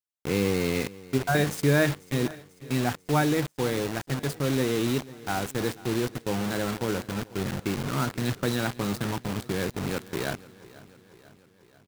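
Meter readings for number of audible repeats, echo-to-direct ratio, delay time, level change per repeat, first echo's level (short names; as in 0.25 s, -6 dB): 4, -18.0 dB, 0.492 s, -4.5 dB, -20.0 dB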